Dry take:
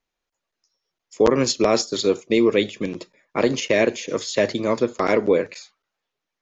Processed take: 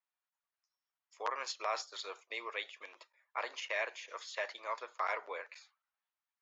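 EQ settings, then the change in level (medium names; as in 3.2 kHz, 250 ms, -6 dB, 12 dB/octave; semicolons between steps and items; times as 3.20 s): high-pass 890 Hz 24 dB/octave; low-pass 1.2 kHz 6 dB/octave; -5.5 dB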